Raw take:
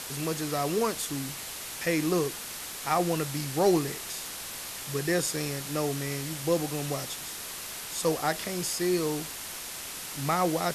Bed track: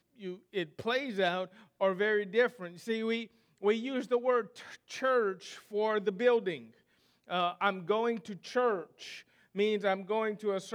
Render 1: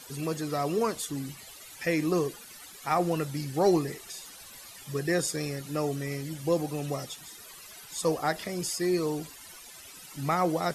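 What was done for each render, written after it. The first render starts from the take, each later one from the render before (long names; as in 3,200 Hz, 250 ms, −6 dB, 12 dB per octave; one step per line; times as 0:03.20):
broadband denoise 15 dB, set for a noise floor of −39 dBFS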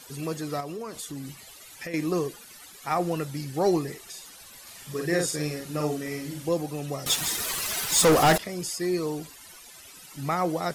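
0:00.60–0:01.94: downward compressor, threshold −32 dBFS
0:04.62–0:06.49: double-tracking delay 47 ms −2.5 dB
0:07.06–0:08.38: leveller curve on the samples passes 5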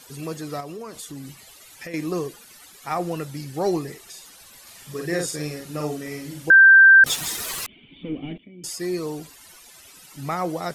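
0:06.50–0:07.04: beep over 1,570 Hz −7 dBFS
0:07.66–0:08.64: formant resonators in series i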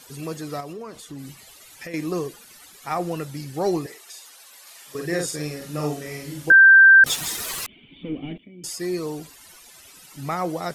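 0:00.73–0:01.19: high-shelf EQ 5,200 Hz −8.5 dB
0:03.86–0:04.95: high-pass filter 510 Hz
0:05.58–0:06.52: double-tracking delay 34 ms −4.5 dB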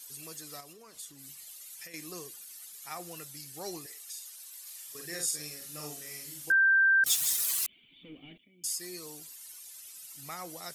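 first-order pre-emphasis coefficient 0.9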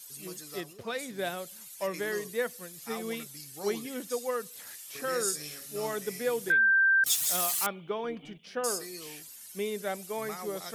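mix in bed track −4 dB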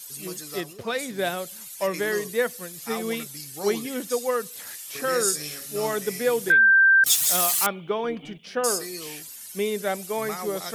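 level +7 dB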